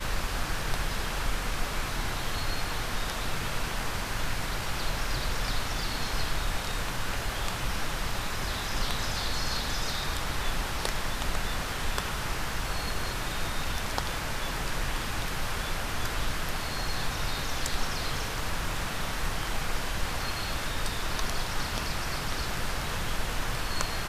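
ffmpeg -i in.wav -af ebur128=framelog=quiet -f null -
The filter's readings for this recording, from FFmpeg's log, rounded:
Integrated loudness:
  I:         -32.0 LUFS
  Threshold: -42.0 LUFS
Loudness range:
  LRA:         1.0 LU
  Threshold: -52.0 LUFS
  LRA low:   -32.3 LUFS
  LRA high:  -31.3 LUFS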